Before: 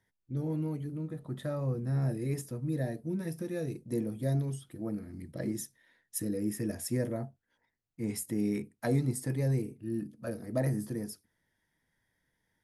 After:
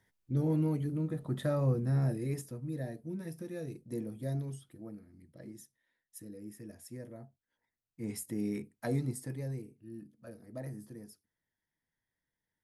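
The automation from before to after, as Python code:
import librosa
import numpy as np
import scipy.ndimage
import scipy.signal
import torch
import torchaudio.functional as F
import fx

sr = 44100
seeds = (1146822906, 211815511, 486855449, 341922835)

y = fx.gain(x, sr, db=fx.line((1.67, 3.5), (2.68, -5.5), (4.6, -5.5), (5.11, -14.0), (7.07, -14.0), (8.1, -4.0), (9.05, -4.0), (9.72, -12.0)))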